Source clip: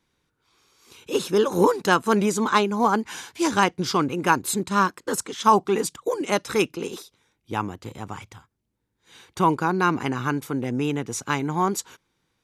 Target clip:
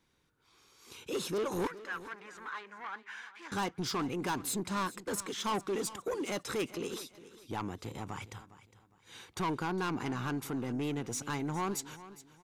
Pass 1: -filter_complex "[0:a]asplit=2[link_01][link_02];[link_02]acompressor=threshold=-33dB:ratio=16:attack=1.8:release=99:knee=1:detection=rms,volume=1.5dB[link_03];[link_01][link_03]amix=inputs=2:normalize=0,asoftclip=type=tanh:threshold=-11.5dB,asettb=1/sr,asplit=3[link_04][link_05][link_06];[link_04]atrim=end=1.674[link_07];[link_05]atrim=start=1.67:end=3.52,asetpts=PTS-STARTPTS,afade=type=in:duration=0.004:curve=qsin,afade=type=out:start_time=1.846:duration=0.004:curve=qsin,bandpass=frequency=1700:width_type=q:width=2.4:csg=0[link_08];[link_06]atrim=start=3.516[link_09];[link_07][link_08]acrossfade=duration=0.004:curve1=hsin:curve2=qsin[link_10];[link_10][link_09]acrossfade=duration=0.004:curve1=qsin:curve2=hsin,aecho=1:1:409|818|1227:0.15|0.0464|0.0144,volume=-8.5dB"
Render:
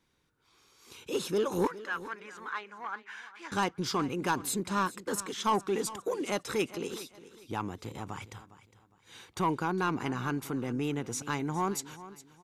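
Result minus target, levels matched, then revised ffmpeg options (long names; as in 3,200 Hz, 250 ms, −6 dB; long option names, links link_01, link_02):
soft clipping: distortion −8 dB
-filter_complex "[0:a]asplit=2[link_01][link_02];[link_02]acompressor=threshold=-33dB:ratio=16:attack=1.8:release=99:knee=1:detection=rms,volume=1.5dB[link_03];[link_01][link_03]amix=inputs=2:normalize=0,asoftclip=type=tanh:threshold=-20.5dB,asettb=1/sr,asplit=3[link_04][link_05][link_06];[link_04]atrim=end=1.674[link_07];[link_05]atrim=start=1.67:end=3.52,asetpts=PTS-STARTPTS,afade=type=in:duration=0.004:curve=qsin,afade=type=out:start_time=1.846:duration=0.004:curve=qsin,bandpass=frequency=1700:width_type=q:width=2.4:csg=0[link_08];[link_06]atrim=start=3.516[link_09];[link_07][link_08]acrossfade=duration=0.004:curve1=hsin:curve2=qsin[link_10];[link_10][link_09]acrossfade=duration=0.004:curve1=qsin:curve2=hsin,aecho=1:1:409|818|1227:0.15|0.0464|0.0144,volume=-8.5dB"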